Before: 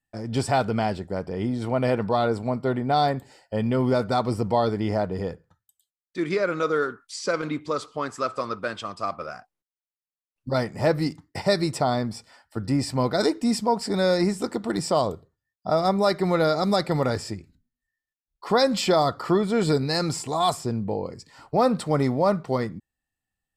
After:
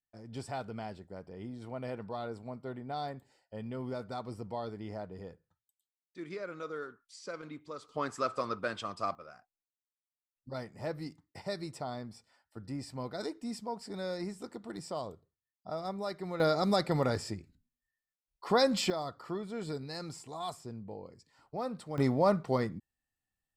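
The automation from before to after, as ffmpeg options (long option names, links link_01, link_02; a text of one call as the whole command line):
ffmpeg -i in.wav -af "asetnsamples=nb_out_samples=441:pad=0,asendcmd='7.89 volume volume -5.5dB;9.15 volume volume -16dB;16.4 volume volume -6dB;18.9 volume volume -16.5dB;21.98 volume volume -5dB',volume=-16.5dB" out.wav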